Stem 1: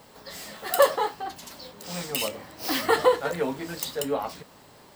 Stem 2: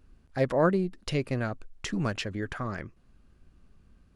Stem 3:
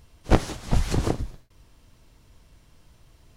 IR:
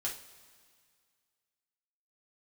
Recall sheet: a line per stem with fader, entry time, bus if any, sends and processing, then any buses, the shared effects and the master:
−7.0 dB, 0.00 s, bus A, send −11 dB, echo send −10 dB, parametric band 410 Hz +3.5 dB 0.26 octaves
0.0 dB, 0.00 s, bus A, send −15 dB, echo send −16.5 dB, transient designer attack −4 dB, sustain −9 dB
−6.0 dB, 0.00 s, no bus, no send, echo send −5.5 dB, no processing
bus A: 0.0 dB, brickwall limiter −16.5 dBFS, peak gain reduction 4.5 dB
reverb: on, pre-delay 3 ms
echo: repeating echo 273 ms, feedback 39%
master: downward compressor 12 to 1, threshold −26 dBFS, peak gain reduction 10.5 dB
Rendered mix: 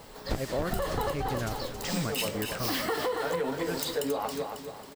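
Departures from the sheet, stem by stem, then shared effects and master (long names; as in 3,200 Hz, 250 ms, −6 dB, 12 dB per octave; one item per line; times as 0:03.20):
stem 1 −7.0 dB → +2.0 dB
reverb return −9.0 dB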